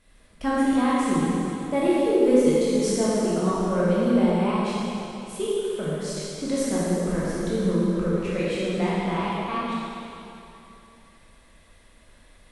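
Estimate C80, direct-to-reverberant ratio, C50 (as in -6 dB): -2.5 dB, -9.0 dB, -4.5 dB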